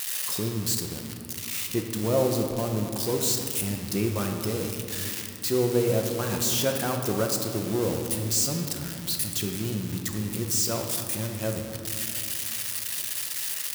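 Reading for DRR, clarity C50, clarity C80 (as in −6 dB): 2.5 dB, 4.5 dB, 6.0 dB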